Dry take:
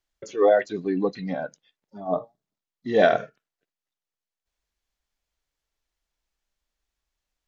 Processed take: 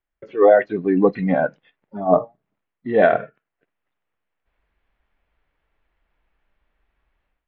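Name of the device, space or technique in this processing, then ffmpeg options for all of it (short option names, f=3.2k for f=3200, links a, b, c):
action camera in a waterproof case: -af "lowpass=f=2.5k:w=0.5412,lowpass=f=2.5k:w=1.3066,dynaudnorm=f=220:g=3:m=15.5dB,volume=-1dB" -ar 48000 -c:a aac -b:a 64k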